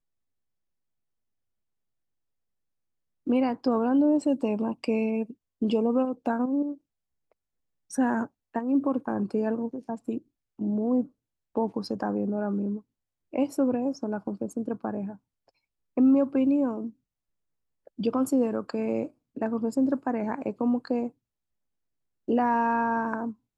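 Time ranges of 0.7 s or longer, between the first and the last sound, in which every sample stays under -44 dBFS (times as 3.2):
6.75–7.91
15.16–15.97
16.9–17.87
21.09–22.28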